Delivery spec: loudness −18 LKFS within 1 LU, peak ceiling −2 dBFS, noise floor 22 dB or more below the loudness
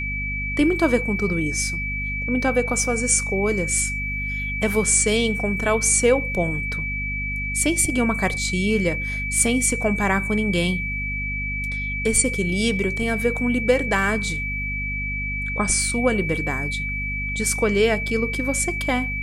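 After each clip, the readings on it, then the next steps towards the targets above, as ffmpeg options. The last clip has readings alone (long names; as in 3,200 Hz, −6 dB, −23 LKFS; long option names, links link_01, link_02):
mains hum 50 Hz; hum harmonics up to 250 Hz; level of the hum −28 dBFS; interfering tone 2,300 Hz; level of the tone −26 dBFS; integrated loudness −21.5 LKFS; sample peak −5.0 dBFS; target loudness −18.0 LKFS
→ -af "bandreject=frequency=50:width_type=h:width=4,bandreject=frequency=100:width_type=h:width=4,bandreject=frequency=150:width_type=h:width=4,bandreject=frequency=200:width_type=h:width=4,bandreject=frequency=250:width_type=h:width=4"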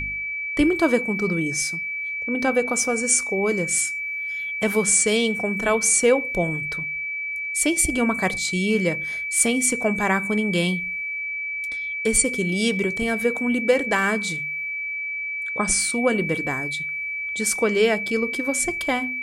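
mains hum none found; interfering tone 2,300 Hz; level of the tone −26 dBFS
→ -af "bandreject=frequency=2300:width=30"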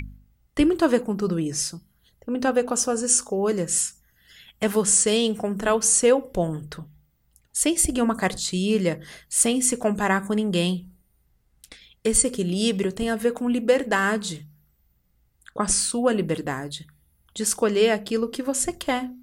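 interfering tone none found; integrated loudness −22.5 LKFS; sample peak −5.5 dBFS; target loudness −18.0 LKFS
→ -af "volume=4.5dB,alimiter=limit=-2dB:level=0:latency=1"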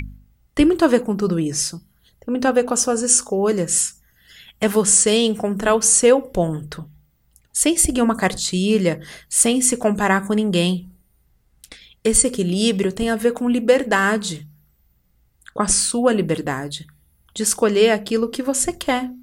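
integrated loudness −18.0 LKFS; sample peak −2.0 dBFS; background noise floor −61 dBFS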